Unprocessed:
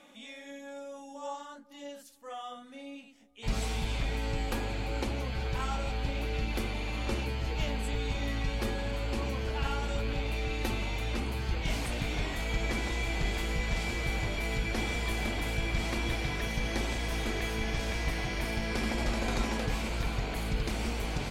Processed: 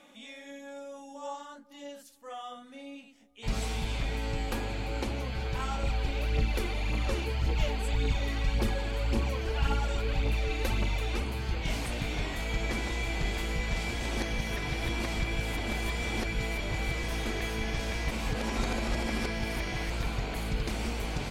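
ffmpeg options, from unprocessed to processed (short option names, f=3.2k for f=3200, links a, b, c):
-filter_complex "[0:a]asettb=1/sr,asplit=3[a][b][c];[a]atrim=end=5.834[d];[b]atrim=start=5.83:end=11.24,asetpts=PTS-STARTPTS,afade=t=in:d=0.004:c=qsin,afade=t=out:st=5.406:d=0.004:c=qsin,aphaser=in_gain=1:out_gain=1:delay=3:decay=0.5:speed=1.8:type=triangular[e];[c]atrim=start=11.236[f];[d][e]acrossfade=d=0.004:c1=hsin:c2=qsin[g];[g][f]acrossfade=d=0.004:c1=qsin:c2=hsin,asplit=5[h][i][j][k][l];[h]atrim=end=13.942[m];[i]atrim=start=13.938:end=17.042,asetpts=PTS-STARTPTS,areverse[n];[j]atrim=start=17.038:end=18.112[o];[k]atrim=start=18.108:end=19.902,asetpts=PTS-STARTPTS,areverse[p];[l]atrim=start=19.898[q];[m][n]acrossfade=d=0.004:c1=hsin:c2=hsin[r];[r][o]acrossfade=d=0.004:c1=hsin:c2=hsin[s];[s][p]acrossfade=d=0.004:c1=hsin:c2=hsin[t];[t][q]acrossfade=d=0.004:c1=hsin:c2=hsin"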